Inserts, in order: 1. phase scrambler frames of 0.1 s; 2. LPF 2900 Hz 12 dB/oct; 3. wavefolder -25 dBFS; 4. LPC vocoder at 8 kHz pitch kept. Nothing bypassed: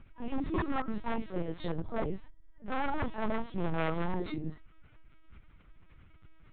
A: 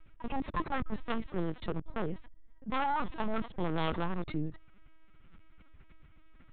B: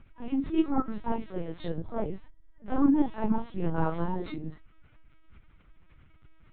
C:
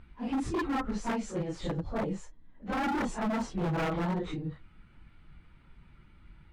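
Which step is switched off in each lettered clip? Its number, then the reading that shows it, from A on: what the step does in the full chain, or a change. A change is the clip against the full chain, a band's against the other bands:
1, 4 kHz band +4.0 dB; 3, 2 kHz band -7.5 dB; 4, 500 Hz band -2.0 dB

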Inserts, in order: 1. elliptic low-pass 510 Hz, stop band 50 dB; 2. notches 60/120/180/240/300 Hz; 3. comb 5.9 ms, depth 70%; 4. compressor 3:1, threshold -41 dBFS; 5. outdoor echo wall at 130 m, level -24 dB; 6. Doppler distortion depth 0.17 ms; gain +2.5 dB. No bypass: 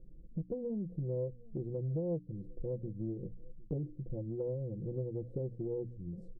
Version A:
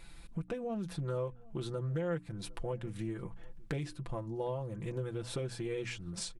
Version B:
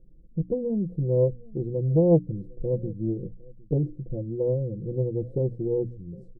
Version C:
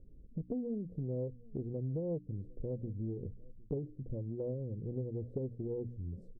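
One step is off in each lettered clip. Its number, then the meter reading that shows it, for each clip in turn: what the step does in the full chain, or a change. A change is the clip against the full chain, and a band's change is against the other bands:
1, crest factor change +6.5 dB; 4, mean gain reduction 8.5 dB; 3, crest factor change +2.0 dB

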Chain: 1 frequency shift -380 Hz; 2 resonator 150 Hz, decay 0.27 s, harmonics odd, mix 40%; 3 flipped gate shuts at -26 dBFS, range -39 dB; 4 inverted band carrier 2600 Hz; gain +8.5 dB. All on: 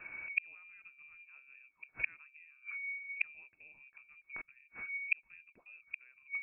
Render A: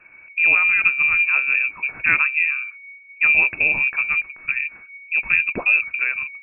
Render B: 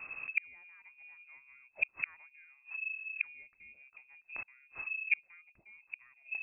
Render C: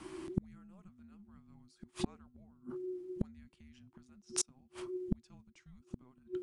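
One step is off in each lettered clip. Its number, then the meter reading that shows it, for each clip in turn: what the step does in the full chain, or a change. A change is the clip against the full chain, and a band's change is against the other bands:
3, momentary loudness spread change -10 LU; 1, crest factor change -2.5 dB; 4, crest factor change -2.0 dB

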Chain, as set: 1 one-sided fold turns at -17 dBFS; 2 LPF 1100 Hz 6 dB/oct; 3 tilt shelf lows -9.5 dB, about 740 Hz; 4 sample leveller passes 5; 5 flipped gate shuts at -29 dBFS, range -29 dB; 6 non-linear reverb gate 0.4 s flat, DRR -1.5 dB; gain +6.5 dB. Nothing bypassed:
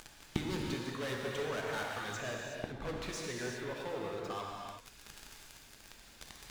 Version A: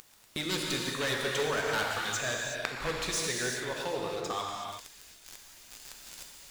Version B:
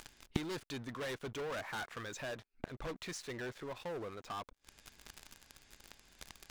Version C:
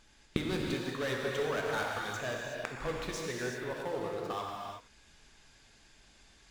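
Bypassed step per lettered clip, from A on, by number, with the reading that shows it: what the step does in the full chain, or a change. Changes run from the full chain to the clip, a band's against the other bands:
2, crest factor change +2.0 dB; 6, crest factor change +4.0 dB; 1, distortion -13 dB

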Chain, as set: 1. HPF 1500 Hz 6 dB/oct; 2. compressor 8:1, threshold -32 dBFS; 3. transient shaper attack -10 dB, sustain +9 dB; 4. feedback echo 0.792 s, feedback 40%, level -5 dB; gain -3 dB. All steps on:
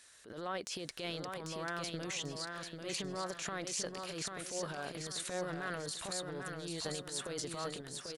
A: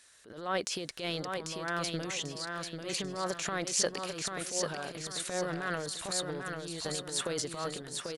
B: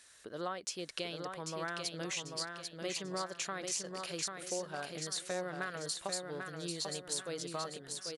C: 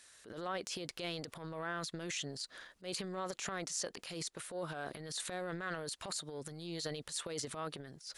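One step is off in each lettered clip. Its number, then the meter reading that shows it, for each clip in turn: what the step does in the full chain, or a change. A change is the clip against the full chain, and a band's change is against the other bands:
2, mean gain reduction 3.0 dB; 3, 125 Hz band -2.5 dB; 4, echo-to-direct -4.0 dB to none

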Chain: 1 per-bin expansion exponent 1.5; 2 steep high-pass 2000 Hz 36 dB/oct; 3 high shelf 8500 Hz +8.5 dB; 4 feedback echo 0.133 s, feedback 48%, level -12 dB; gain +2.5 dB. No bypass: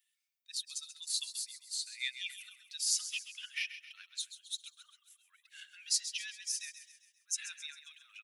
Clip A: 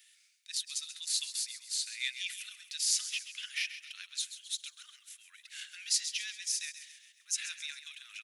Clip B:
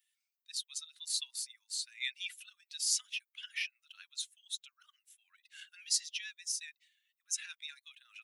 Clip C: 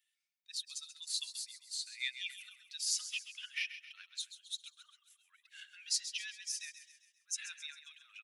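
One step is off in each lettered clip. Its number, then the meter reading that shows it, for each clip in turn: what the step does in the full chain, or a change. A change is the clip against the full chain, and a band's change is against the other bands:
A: 1, loudness change +2.5 LU; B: 4, echo-to-direct -11.0 dB to none; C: 3, momentary loudness spread change -2 LU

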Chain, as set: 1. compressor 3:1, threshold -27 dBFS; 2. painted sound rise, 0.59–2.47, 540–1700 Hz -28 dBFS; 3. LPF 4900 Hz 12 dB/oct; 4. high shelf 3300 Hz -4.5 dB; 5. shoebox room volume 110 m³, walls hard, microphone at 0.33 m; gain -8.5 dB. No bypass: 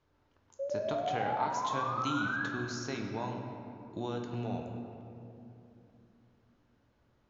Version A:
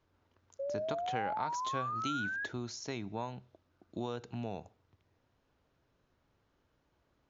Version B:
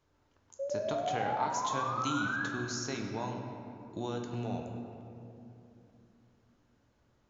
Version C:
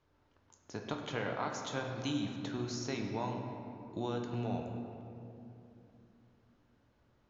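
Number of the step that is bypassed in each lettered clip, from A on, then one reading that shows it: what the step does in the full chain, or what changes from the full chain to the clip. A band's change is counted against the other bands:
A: 5, echo-to-direct -1.5 dB to none; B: 3, 4 kHz band +1.5 dB; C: 2, 1 kHz band -8.0 dB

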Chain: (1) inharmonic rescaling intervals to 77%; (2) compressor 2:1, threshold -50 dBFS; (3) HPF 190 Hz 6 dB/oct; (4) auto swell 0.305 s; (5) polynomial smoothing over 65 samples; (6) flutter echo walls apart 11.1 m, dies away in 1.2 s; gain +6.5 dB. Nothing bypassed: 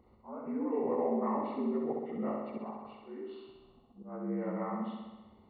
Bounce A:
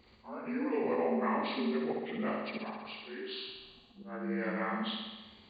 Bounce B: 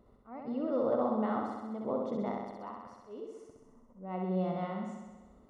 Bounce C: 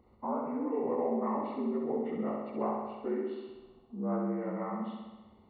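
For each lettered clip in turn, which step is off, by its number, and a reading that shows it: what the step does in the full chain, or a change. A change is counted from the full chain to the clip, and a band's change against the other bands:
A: 5, 2 kHz band +15.0 dB; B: 1, 125 Hz band +3.5 dB; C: 4, momentary loudness spread change -4 LU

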